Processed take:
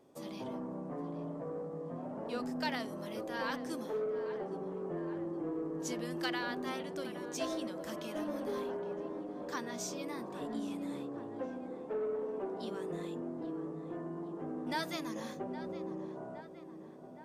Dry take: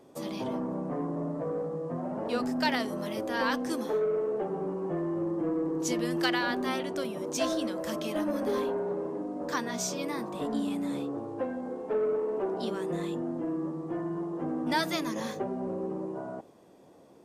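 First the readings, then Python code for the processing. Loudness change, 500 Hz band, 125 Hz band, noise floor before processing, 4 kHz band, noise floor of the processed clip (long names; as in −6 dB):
−7.5 dB, −7.5 dB, −7.5 dB, −55 dBFS, −8.0 dB, −49 dBFS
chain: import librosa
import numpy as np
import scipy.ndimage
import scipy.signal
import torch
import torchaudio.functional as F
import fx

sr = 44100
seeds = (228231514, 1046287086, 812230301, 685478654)

y = fx.echo_filtered(x, sr, ms=816, feedback_pct=73, hz=2200.0, wet_db=-12.0)
y = F.gain(torch.from_numpy(y), -8.0).numpy()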